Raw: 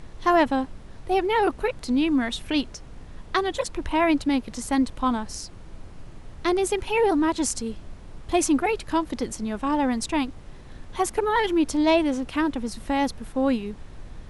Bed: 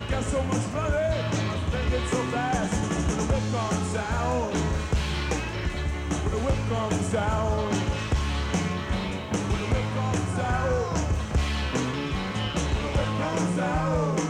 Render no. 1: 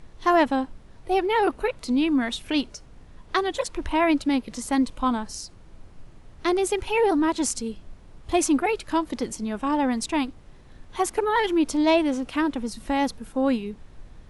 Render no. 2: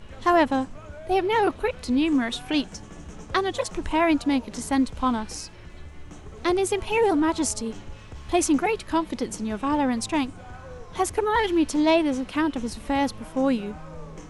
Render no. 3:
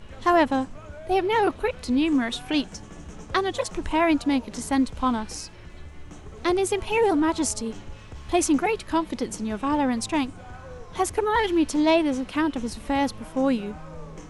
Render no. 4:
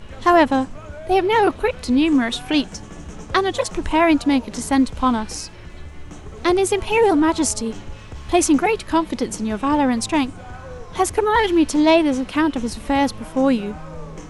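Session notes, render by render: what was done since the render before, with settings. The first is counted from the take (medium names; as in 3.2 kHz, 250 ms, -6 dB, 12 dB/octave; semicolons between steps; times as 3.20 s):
noise print and reduce 6 dB
add bed -16.5 dB
no audible change
trim +5.5 dB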